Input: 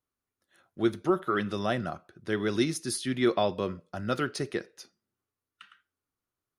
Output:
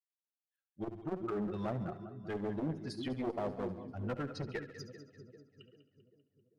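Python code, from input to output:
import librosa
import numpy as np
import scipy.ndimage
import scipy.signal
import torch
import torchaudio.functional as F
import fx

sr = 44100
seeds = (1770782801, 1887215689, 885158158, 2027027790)

p1 = fx.bin_expand(x, sr, power=2.0)
p2 = fx.env_lowpass_down(p1, sr, base_hz=430.0, full_db=-27.5)
p3 = fx.echo_split(p2, sr, split_hz=490.0, low_ms=393, high_ms=196, feedback_pct=52, wet_db=-14.0)
p4 = fx.over_compress(p3, sr, threshold_db=-33.0, ratio=-1.0)
p5 = p3 + (p4 * 10.0 ** (-1.0 / 20.0))
p6 = fx.clip_asym(p5, sr, top_db=-29.5, bottom_db=-19.5)
p7 = p6 + fx.echo_feedback(p6, sr, ms=70, feedback_pct=54, wet_db=-14.0, dry=0)
p8 = fx.transformer_sat(p7, sr, knee_hz=370.0)
y = p8 * 10.0 ** (-4.0 / 20.0)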